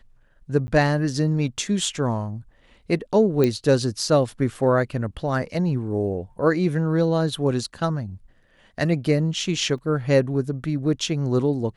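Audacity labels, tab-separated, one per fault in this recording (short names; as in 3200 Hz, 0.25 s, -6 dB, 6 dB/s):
0.670000	0.680000	gap 10 ms
3.440000	3.440000	pop -9 dBFS
9.780000	9.780000	gap 3.5 ms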